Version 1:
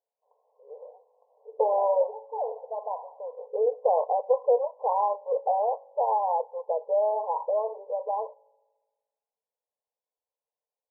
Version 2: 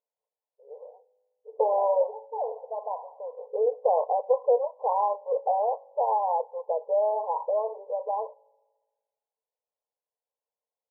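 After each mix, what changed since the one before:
background: muted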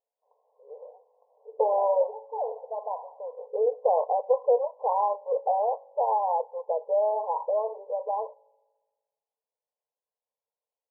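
background: unmuted

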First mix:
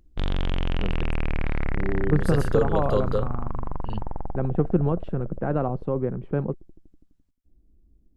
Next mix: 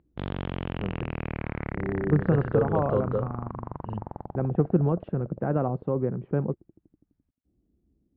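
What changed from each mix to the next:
first voice: add distance through air 370 m; background: add high-pass 100 Hz 12 dB/octave; master: add distance through air 420 m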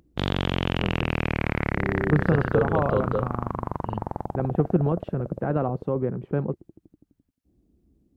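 background +6.0 dB; master: remove distance through air 420 m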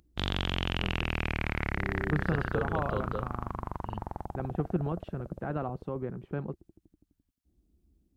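master: add graphic EQ 125/250/500/1000/2000 Hz -8/-6/-9/-4/-3 dB

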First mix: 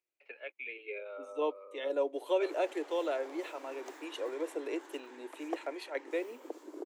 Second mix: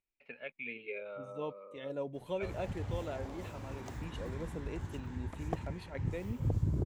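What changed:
second voice -7.5 dB; master: remove steep high-pass 300 Hz 72 dB/octave

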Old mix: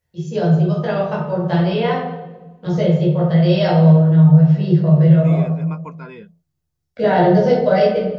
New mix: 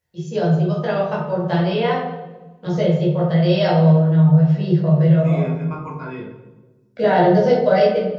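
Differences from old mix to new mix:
second voice: send on; master: add bass shelf 140 Hz -7 dB

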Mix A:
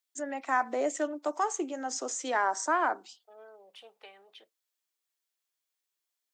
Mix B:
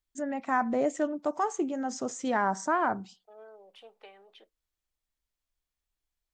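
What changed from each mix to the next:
first voice: remove steep high-pass 270 Hz 48 dB/octave; master: add tilt EQ -2 dB/octave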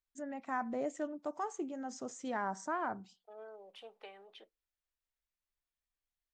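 first voice -9.5 dB

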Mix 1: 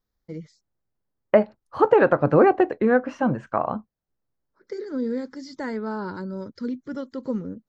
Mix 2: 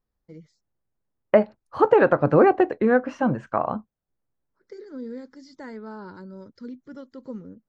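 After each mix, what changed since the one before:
first voice -8.5 dB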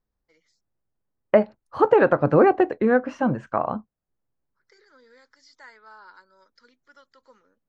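first voice: add Chebyshev high-pass 1.3 kHz, order 2

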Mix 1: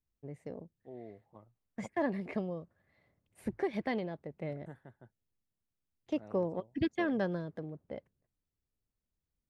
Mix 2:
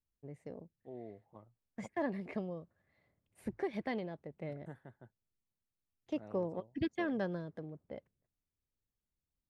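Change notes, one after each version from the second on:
first voice -3.5 dB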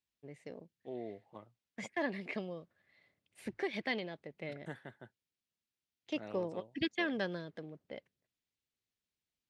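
second voice +5.5 dB; master: add frequency weighting D

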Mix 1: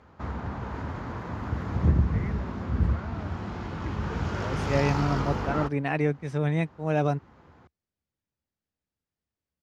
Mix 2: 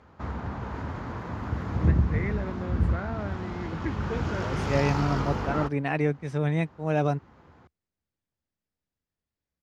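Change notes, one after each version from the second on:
first voice +8.5 dB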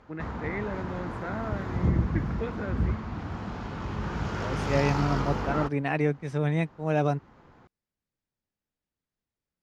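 first voice: entry -1.70 s; background: remove high-pass 52 Hz; master: add peaking EQ 74 Hz -7 dB 0.63 oct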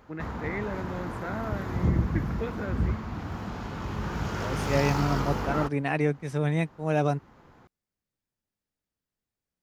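master: remove distance through air 60 m

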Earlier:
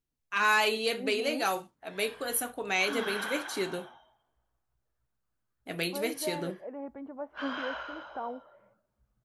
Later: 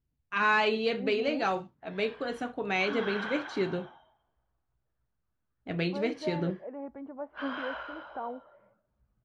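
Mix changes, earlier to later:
first voice: add peaking EQ 80 Hz +13.5 dB 2.6 oct; master: add Gaussian low-pass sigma 1.9 samples

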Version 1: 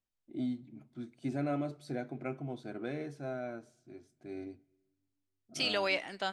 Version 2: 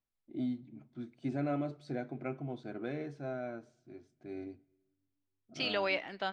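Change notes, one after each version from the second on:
second voice: add low-pass 5.1 kHz 12 dB/octave; master: add distance through air 93 m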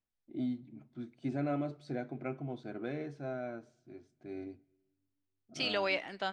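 second voice: remove low-pass 5.1 kHz 12 dB/octave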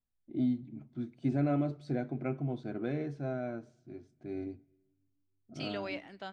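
second voice -9.0 dB; master: add bass shelf 310 Hz +8.5 dB

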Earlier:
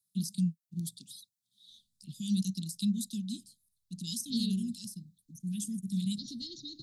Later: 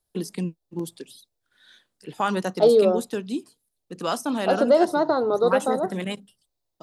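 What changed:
second voice: entry -1.70 s; master: remove Chebyshev band-stop 210–3700 Hz, order 4

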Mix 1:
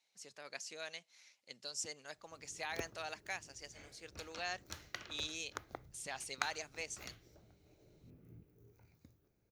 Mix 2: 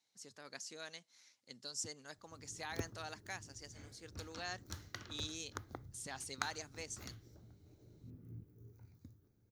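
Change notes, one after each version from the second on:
master: add fifteen-band graphic EQ 100 Hz +11 dB, 250 Hz +6 dB, 630 Hz -5 dB, 2.5 kHz -8 dB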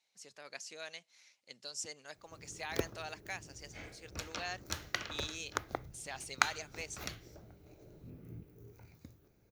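background +9.0 dB; master: add fifteen-band graphic EQ 100 Hz -11 dB, 250 Hz -6 dB, 630 Hz +5 dB, 2.5 kHz +8 dB

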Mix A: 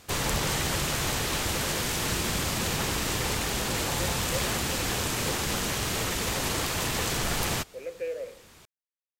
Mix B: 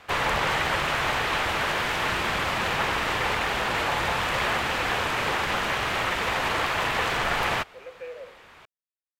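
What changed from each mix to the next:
background +9.0 dB; master: add three-band isolator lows -13 dB, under 560 Hz, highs -21 dB, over 3 kHz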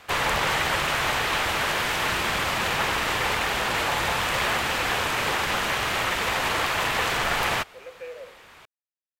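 master: add treble shelf 5.2 kHz +8.5 dB

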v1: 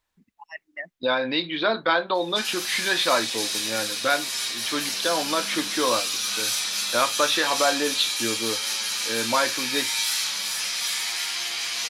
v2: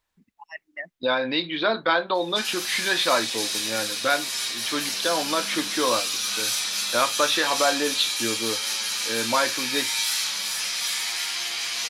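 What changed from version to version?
no change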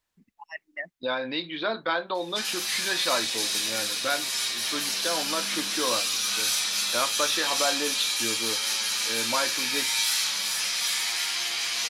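second voice -5.5 dB

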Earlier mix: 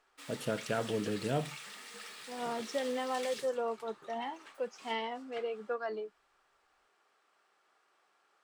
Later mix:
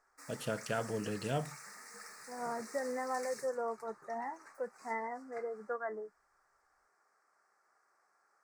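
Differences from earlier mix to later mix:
second voice: add brick-wall FIR low-pass 2.1 kHz; background: add Chebyshev band-stop 1.8–5.5 kHz, order 2; master: add peaking EQ 320 Hz -5 dB 1.5 oct

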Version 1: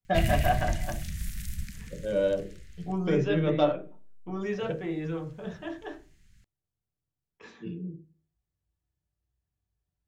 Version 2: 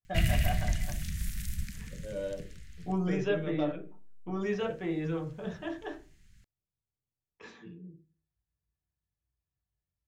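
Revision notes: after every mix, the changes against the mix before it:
first voice -10.5 dB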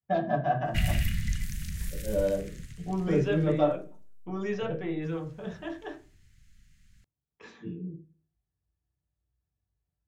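first voice: send +11.5 dB; background: entry +0.60 s

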